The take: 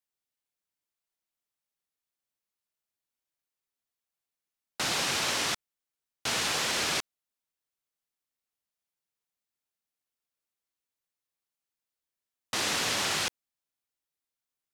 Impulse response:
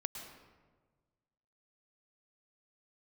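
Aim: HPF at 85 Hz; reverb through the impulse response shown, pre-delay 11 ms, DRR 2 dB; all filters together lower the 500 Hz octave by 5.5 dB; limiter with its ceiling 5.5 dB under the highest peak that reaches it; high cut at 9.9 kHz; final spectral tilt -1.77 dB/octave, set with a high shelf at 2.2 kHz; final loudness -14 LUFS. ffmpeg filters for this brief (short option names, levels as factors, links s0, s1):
-filter_complex "[0:a]highpass=85,lowpass=9900,equalizer=f=500:t=o:g=-7.5,highshelf=f=2200:g=4.5,alimiter=limit=0.1:level=0:latency=1,asplit=2[s0][s1];[1:a]atrim=start_sample=2205,adelay=11[s2];[s1][s2]afir=irnorm=-1:irlink=0,volume=0.841[s3];[s0][s3]amix=inputs=2:normalize=0,volume=4.47"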